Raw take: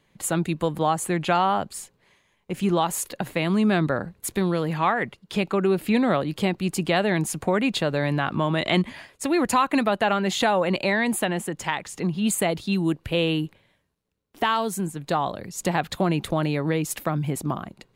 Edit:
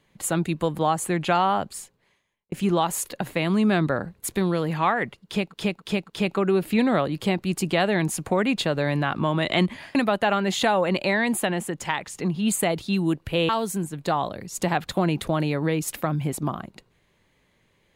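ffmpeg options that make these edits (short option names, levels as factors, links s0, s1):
-filter_complex "[0:a]asplit=7[s0][s1][s2][s3][s4][s5][s6];[s0]atrim=end=2.52,asetpts=PTS-STARTPTS,afade=t=out:st=1.7:d=0.82[s7];[s1]atrim=start=2.52:end=5.54,asetpts=PTS-STARTPTS,afade=t=in:d=0.004:c=hsin[s8];[s2]atrim=start=5.1:end=5.54[s9];[s3]atrim=start=5.1:end=5.54[s10];[s4]atrim=start=5.1:end=9.112[s11];[s5]atrim=start=9.738:end=13.282[s12];[s6]atrim=start=14.518[s13];[s7][s8]concat=n=2:v=0:a=1[s14];[s14][s9]acrossfade=d=0.16:c1=tri:c2=tri[s15];[s15][s10]acrossfade=d=0.16:c1=tri:c2=tri[s16];[s16][s11]acrossfade=d=0.16:c1=tri:c2=tri[s17];[s17][s12]acrossfade=d=0.004:c1=hsin:c2=hsin[s18];[s18][s13]acrossfade=d=0.004:c1=hsin:c2=hsin"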